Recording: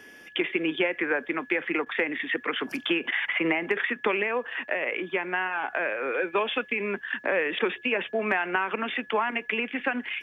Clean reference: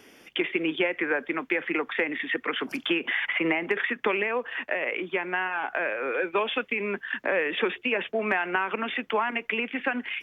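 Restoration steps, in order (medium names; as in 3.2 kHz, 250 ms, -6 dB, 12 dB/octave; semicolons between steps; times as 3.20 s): band-stop 1.7 kHz, Q 30; interpolate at 1.85/3.11/7.59 s, 10 ms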